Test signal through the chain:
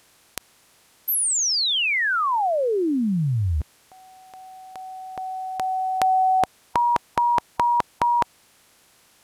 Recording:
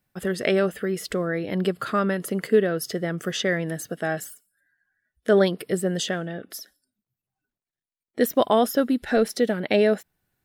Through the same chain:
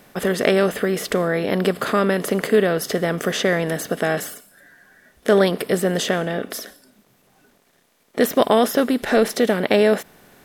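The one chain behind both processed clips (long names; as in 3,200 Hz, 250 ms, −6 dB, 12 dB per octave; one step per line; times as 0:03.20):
compressor on every frequency bin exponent 0.6
level +1 dB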